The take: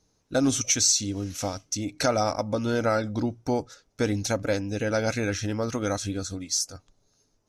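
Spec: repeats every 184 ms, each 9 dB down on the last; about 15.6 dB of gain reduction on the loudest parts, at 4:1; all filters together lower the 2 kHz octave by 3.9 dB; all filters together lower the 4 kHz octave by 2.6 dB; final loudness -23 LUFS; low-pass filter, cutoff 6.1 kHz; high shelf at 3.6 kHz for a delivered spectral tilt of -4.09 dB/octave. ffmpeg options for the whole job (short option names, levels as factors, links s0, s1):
-af "lowpass=6100,equalizer=f=2000:t=o:g=-6,highshelf=f=3600:g=8.5,equalizer=f=4000:t=o:g=-8.5,acompressor=threshold=0.0112:ratio=4,aecho=1:1:184|368|552|736:0.355|0.124|0.0435|0.0152,volume=7.08"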